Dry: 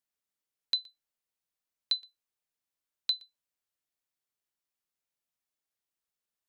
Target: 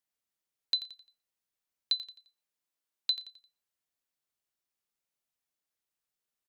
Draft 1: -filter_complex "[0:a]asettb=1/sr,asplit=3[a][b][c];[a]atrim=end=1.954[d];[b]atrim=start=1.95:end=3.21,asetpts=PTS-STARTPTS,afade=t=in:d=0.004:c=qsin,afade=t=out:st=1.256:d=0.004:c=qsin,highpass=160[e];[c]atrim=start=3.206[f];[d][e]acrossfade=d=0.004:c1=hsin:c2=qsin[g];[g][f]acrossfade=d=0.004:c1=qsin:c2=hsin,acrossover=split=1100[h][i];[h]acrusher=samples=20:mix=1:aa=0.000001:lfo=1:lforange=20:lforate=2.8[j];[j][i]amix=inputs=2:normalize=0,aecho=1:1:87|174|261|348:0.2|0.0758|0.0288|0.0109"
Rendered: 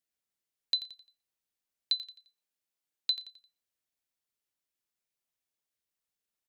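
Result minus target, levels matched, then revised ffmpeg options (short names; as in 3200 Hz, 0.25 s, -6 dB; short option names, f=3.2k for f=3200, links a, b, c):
decimation with a swept rate: distortion +13 dB
-filter_complex "[0:a]asettb=1/sr,asplit=3[a][b][c];[a]atrim=end=1.954[d];[b]atrim=start=1.95:end=3.21,asetpts=PTS-STARTPTS,afade=t=in:d=0.004:c=qsin,afade=t=out:st=1.256:d=0.004:c=qsin,highpass=160[e];[c]atrim=start=3.206[f];[d][e]acrossfade=d=0.004:c1=hsin:c2=qsin[g];[g][f]acrossfade=d=0.004:c1=qsin:c2=hsin,acrossover=split=1100[h][i];[h]acrusher=samples=5:mix=1:aa=0.000001:lfo=1:lforange=5:lforate=2.8[j];[j][i]amix=inputs=2:normalize=0,aecho=1:1:87|174|261|348:0.2|0.0758|0.0288|0.0109"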